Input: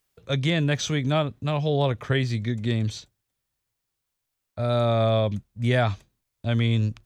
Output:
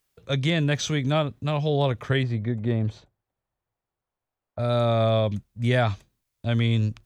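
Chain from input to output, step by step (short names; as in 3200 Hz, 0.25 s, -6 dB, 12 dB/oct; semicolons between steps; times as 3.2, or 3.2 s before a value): 2.23–4.59 EQ curve 260 Hz 0 dB, 750 Hz +6 dB, 5700 Hz -17 dB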